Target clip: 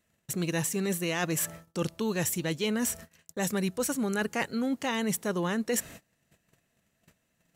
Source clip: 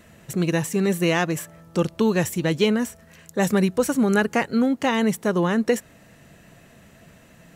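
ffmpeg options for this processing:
ffmpeg -i in.wav -af "agate=range=-28dB:threshold=-45dB:ratio=16:detection=peak,highshelf=frequency=2800:gain=8,areverse,acompressor=threshold=-30dB:ratio=6,areverse,volume=2.5dB" out.wav

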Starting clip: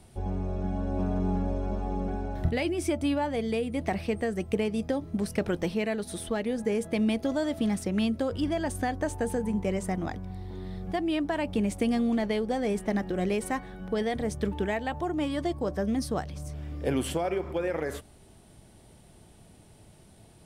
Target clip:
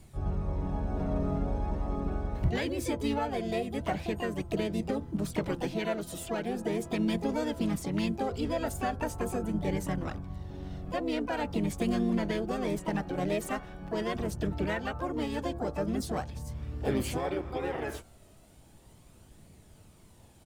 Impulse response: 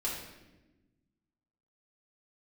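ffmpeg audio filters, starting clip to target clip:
-filter_complex "[0:a]asplit=3[link_01][link_02][link_03];[link_02]asetrate=35002,aresample=44100,atempo=1.25992,volume=-4dB[link_04];[link_03]asetrate=66075,aresample=44100,atempo=0.66742,volume=-6dB[link_05];[link_01][link_04][link_05]amix=inputs=3:normalize=0,bandreject=frequency=171.3:width_type=h:width=4,bandreject=frequency=342.6:width_type=h:width=4,bandreject=frequency=513.9:width_type=h:width=4,bandreject=frequency=685.2:width_type=h:width=4,bandreject=frequency=856.5:width_type=h:width=4,bandreject=frequency=1027.8:width_type=h:width=4,bandreject=frequency=1199.1:width_type=h:width=4,bandreject=frequency=1370.4:width_type=h:width=4,bandreject=frequency=1541.7:width_type=h:width=4,flanger=delay=0.4:depth=1.2:regen=67:speed=0.41:shape=triangular"

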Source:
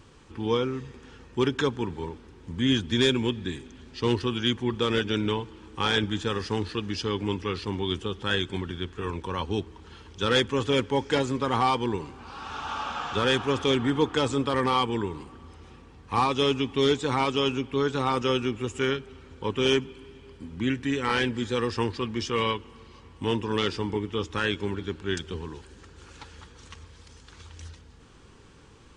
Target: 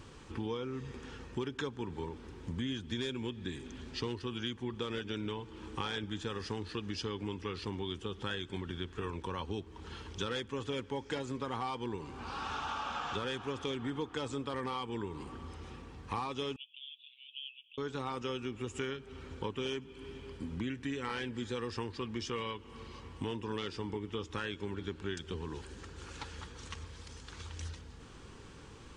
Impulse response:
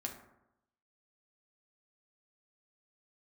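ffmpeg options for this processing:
-filter_complex "[0:a]acompressor=threshold=-36dB:ratio=6,asettb=1/sr,asplit=3[link_01][link_02][link_03];[link_01]atrim=end=16.564[link_04];[link_02]atrim=start=16.56:end=17.78,asetpts=PTS-STARTPTS,afade=type=in:duration=0.004:curve=qsin,afade=type=out:start_time=1.216:duration=0.004:curve=qsin,asuperpass=centerf=3000:order=8:qfactor=3.4[link_05];[link_03]atrim=start=17.776[link_06];[link_04][link_05]acrossfade=duration=0.004:curve1=hsin:curve2=qsin[link_07];[link_07][link_06]acrossfade=duration=0.004:curve1=qsin:curve2=hsin,volume=1dB"

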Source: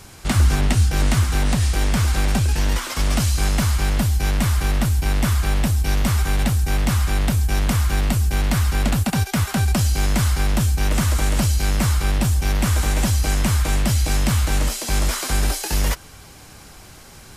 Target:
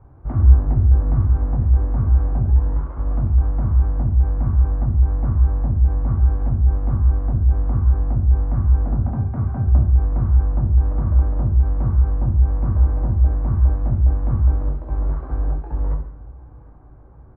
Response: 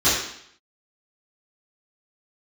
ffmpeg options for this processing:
-filter_complex "[0:a]lowpass=frequency=1100:width=0.5412,lowpass=frequency=1100:width=1.3066,lowshelf=frequency=88:gain=5.5,aecho=1:1:751|1502|2253|3004:0.0794|0.0453|0.0258|0.0147,asplit=2[link_01][link_02];[1:a]atrim=start_sample=2205,lowshelf=frequency=350:gain=7[link_03];[link_02][link_03]afir=irnorm=-1:irlink=0,volume=-21.5dB[link_04];[link_01][link_04]amix=inputs=2:normalize=0,volume=-10dB"

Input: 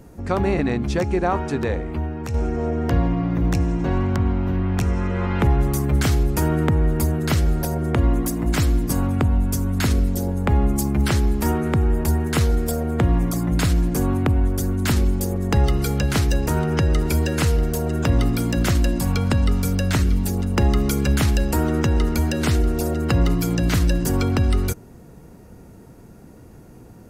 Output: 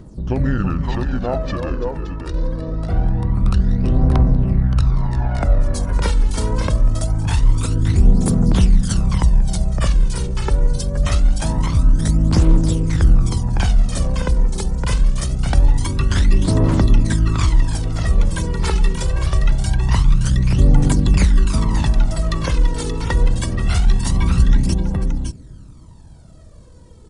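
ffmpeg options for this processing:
ffmpeg -i in.wav -af "aecho=1:1:184|329|571:0.119|0.355|0.501,aphaser=in_gain=1:out_gain=1:delay=1.6:decay=0.59:speed=0.24:type=triangular,asetrate=30296,aresample=44100,atempo=1.45565,volume=-1.5dB" out.wav

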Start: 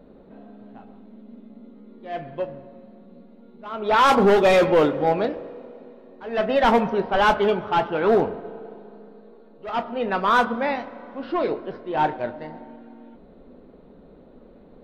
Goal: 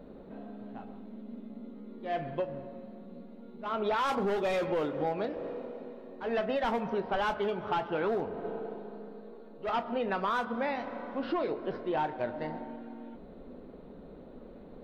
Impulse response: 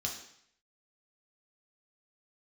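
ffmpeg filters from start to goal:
-af "acompressor=threshold=-28dB:ratio=10"

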